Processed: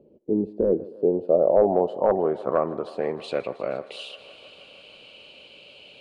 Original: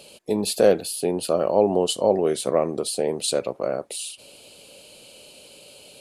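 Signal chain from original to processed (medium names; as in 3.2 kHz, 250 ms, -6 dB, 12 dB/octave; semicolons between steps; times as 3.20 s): wavefolder -9.5 dBFS; low-pass sweep 340 Hz -> 2.8 kHz, 0.61–3.69 s; thinning echo 157 ms, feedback 85%, high-pass 250 Hz, level -19 dB; trim -3.5 dB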